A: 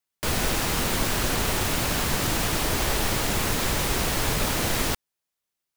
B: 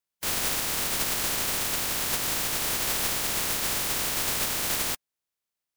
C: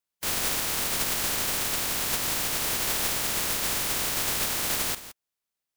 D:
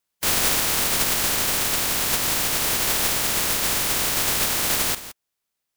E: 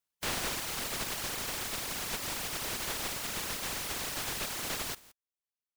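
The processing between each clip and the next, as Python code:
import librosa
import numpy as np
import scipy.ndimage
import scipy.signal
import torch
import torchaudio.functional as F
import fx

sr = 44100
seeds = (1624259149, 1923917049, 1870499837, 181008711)

y1 = fx.spec_flatten(x, sr, power=0.27)
y1 = y1 * librosa.db_to_amplitude(-3.5)
y2 = y1 + 10.0 ** (-14.0 / 20.0) * np.pad(y1, (int(168 * sr / 1000.0), 0))[:len(y1)]
y3 = fx.rider(y2, sr, range_db=10, speed_s=2.0)
y3 = y3 * librosa.db_to_amplitude(5.5)
y4 = fx.dereverb_blind(y3, sr, rt60_s=1.6)
y4 = fx.slew_limit(y4, sr, full_power_hz=360.0)
y4 = y4 * librosa.db_to_amplitude(-8.0)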